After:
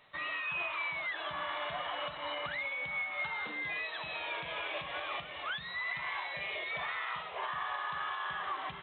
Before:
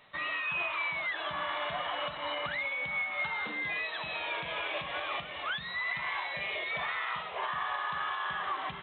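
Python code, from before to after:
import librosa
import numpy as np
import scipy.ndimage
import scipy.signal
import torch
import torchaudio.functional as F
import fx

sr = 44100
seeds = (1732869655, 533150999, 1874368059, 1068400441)

y = fx.peak_eq(x, sr, hz=210.0, db=-4.5, octaves=0.34)
y = y * librosa.db_to_amplitude(-3.0)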